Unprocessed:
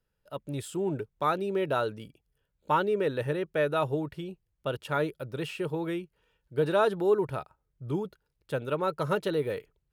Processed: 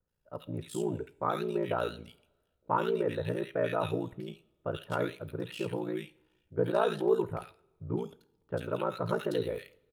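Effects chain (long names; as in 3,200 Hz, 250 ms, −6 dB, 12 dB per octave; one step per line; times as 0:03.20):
multiband delay without the direct sound lows, highs 80 ms, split 1,700 Hz
ring modulation 29 Hz
coupled-rooms reverb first 0.43 s, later 1.6 s, from −20 dB, DRR 14 dB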